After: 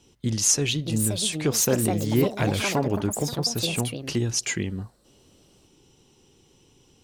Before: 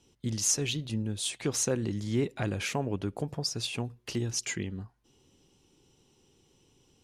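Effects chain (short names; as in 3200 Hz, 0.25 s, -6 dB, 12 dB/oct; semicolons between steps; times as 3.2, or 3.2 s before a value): echoes that change speed 0.695 s, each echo +6 st, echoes 2, each echo -6 dB; gain +6.5 dB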